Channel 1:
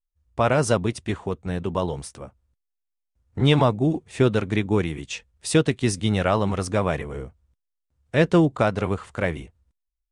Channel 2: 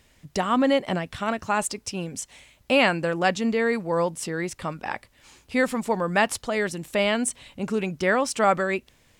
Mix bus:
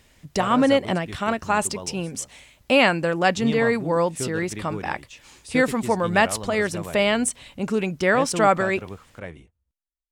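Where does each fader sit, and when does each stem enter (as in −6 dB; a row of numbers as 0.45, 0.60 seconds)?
−12.0, +2.5 decibels; 0.00, 0.00 seconds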